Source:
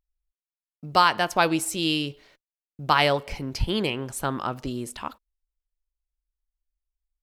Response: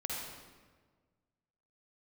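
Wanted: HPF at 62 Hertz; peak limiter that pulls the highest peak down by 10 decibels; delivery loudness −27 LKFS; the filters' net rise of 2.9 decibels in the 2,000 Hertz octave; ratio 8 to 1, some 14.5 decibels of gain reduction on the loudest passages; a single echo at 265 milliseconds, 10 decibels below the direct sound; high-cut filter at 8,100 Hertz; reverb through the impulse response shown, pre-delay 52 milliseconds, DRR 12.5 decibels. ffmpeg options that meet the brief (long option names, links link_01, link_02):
-filter_complex "[0:a]highpass=62,lowpass=8100,equalizer=frequency=2000:width_type=o:gain=4,acompressor=threshold=-28dB:ratio=8,alimiter=limit=-24dB:level=0:latency=1,aecho=1:1:265:0.316,asplit=2[link_01][link_02];[1:a]atrim=start_sample=2205,adelay=52[link_03];[link_02][link_03]afir=irnorm=-1:irlink=0,volume=-15dB[link_04];[link_01][link_04]amix=inputs=2:normalize=0,volume=8.5dB"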